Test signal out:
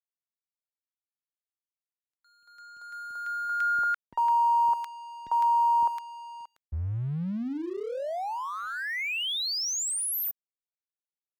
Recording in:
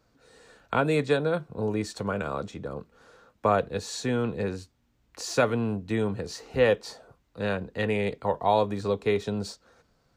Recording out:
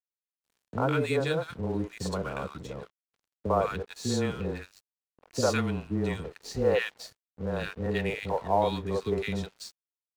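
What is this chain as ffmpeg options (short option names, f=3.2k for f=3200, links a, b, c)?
-filter_complex "[0:a]acrossover=split=410|1300[a][b][c];[b]adelay=50[d];[c]adelay=160[e];[a][d][e]amix=inputs=3:normalize=0,afreqshift=-14,aeval=exprs='sgn(val(0))*max(abs(val(0))-0.00355,0)':c=same"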